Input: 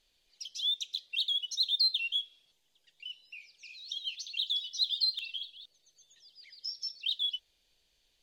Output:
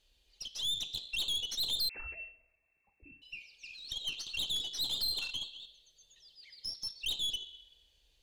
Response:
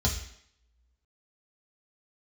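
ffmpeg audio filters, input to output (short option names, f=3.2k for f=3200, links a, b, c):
-filter_complex "[0:a]asplit=2[a][b];[1:a]atrim=start_sample=2205,asetrate=26901,aresample=44100[c];[b][c]afir=irnorm=-1:irlink=0,volume=-19dB[d];[a][d]amix=inputs=2:normalize=0,aeval=exprs='(tanh(31.6*val(0)+0.45)-tanh(0.45))/31.6':c=same,asettb=1/sr,asplit=3[e][f][g];[e]atrim=end=1.894[h];[f]atrim=start=1.89:end=3.22,asetpts=PTS-STARTPTS,afade=t=in:d=0.004:c=qsin,afade=t=out:st=1.326:d=0.004:c=qsin,lowpass=f=2.3k:t=q:w=0.5098,lowpass=f=2.3k:t=q:w=0.6013,lowpass=f=2.3k:t=q:w=0.9,lowpass=f=2.3k:t=q:w=2.563,afreqshift=-2700[i];[g]atrim=start=3.216[j];[h][i]acrossfade=d=0.004:c1=hsin:c2=qsin[k];[k][j]acrossfade=d=0.004:c1=qsin:c2=hsin"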